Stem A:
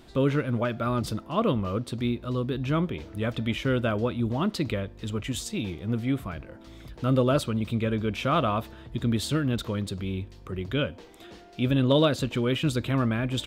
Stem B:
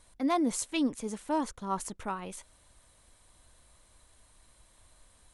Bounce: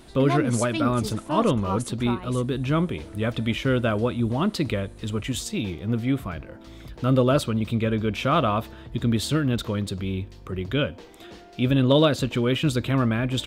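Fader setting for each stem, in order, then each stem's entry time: +3.0, +2.0 decibels; 0.00, 0.00 seconds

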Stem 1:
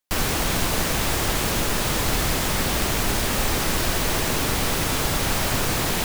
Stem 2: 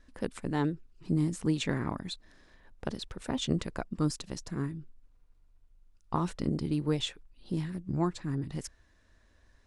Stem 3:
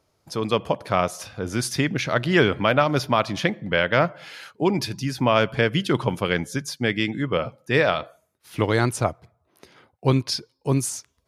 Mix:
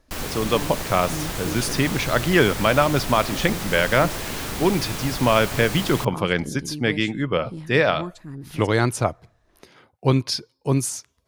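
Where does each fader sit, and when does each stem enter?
−7.0, −3.0, +1.0 decibels; 0.00, 0.00, 0.00 seconds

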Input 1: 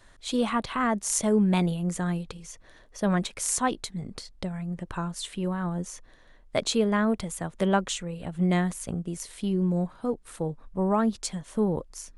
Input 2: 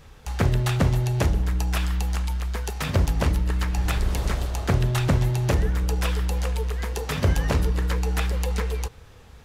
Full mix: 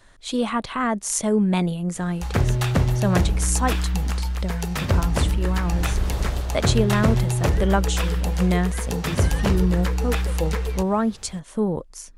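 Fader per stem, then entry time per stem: +2.5, +1.0 decibels; 0.00, 1.95 seconds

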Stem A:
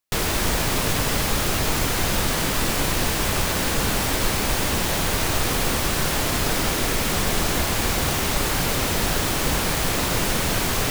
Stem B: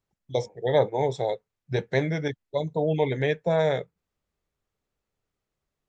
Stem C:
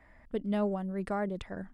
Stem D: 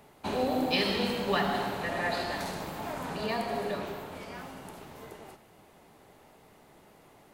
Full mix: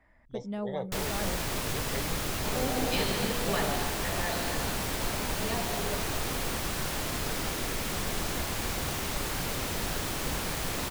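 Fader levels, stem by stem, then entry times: −10.0, −14.5, −5.0, −4.0 decibels; 0.80, 0.00, 0.00, 2.20 seconds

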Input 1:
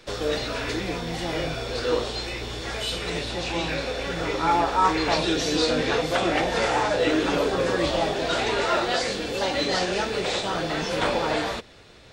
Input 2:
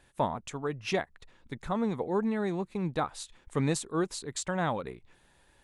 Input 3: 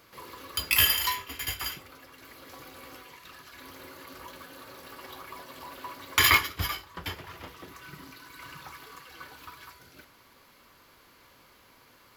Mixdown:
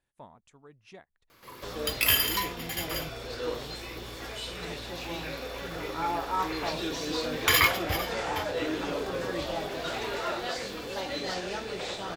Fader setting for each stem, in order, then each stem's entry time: −9.0, −20.0, −1.5 decibels; 1.55, 0.00, 1.30 seconds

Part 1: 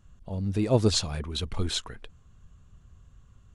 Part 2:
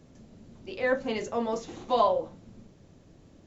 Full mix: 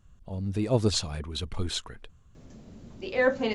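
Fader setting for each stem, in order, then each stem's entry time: −2.0, +3.0 decibels; 0.00, 2.35 seconds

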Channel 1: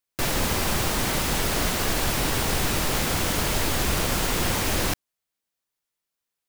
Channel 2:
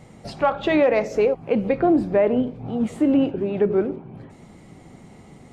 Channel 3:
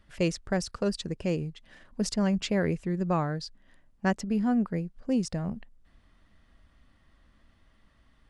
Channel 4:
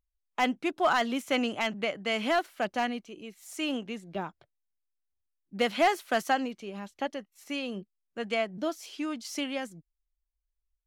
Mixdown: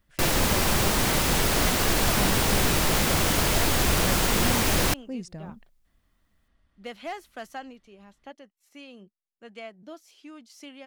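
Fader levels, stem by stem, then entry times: +1.5 dB, muted, −8.0 dB, −11.5 dB; 0.00 s, muted, 0.00 s, 1.25 s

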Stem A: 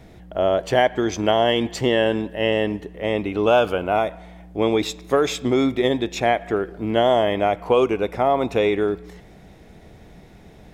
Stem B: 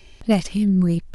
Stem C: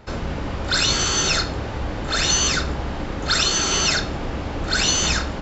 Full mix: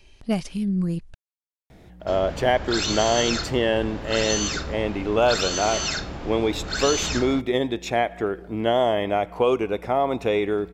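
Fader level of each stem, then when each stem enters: −3.0, −6.0, −7.0 decibels; 1.70, 0.00, 2.00 seconds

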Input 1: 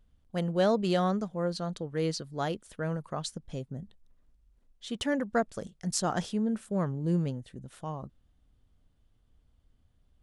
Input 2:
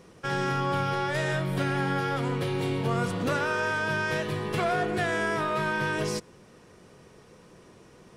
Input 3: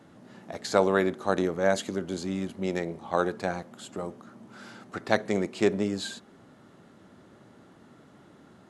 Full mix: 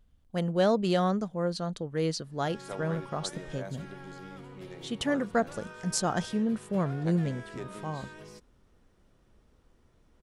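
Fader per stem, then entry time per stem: +1.0, −19.0, −18.0 decibels; 0.00, 2.20, 1.95 seconds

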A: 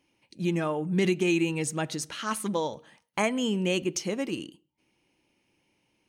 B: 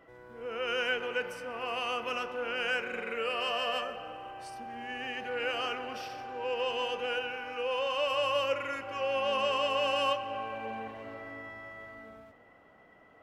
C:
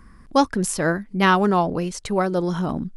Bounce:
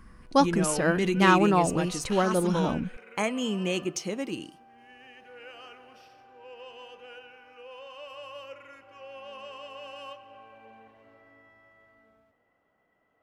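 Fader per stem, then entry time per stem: −2.0, −13.5, −3.5 decibels; 0.00, 0.00, 0.00 seconds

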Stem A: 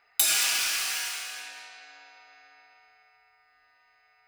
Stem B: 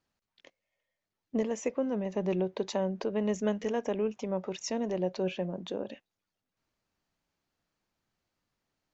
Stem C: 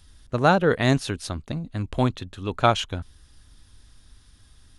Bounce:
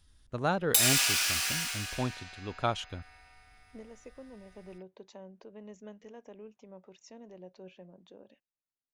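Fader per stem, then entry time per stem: −1.0, −18.0, −11.0 decibels; 0.55, 2.40, 0.00 seconds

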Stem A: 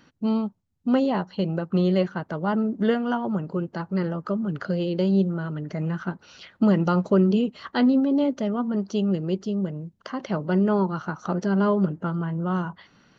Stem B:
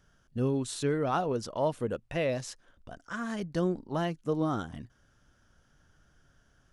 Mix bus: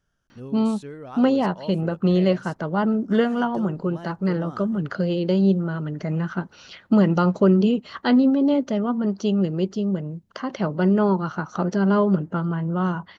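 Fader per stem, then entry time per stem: +2.5, −9.0 decibels; 0.30, 0.00 seconds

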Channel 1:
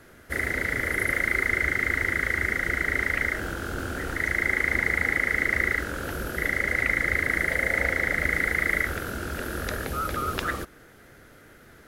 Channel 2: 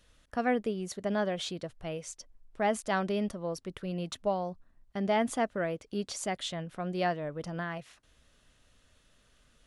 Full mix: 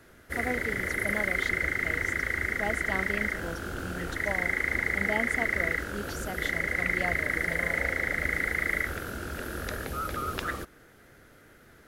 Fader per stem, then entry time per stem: −4.0, −5.0 decibels; 0.00, 0.00 seconds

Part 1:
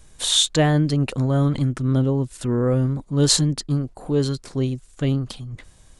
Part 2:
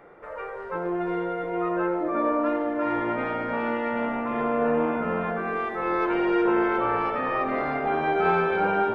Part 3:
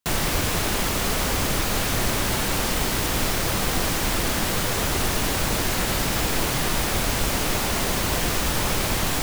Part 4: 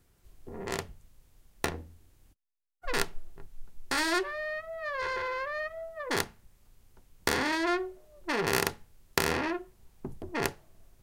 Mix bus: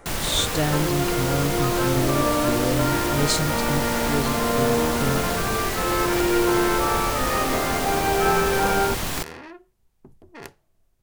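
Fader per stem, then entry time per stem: −6.0, +1.5, −3.5, −9.5 decibels; 0.00, 0.00, 0.00, 0.00 seconds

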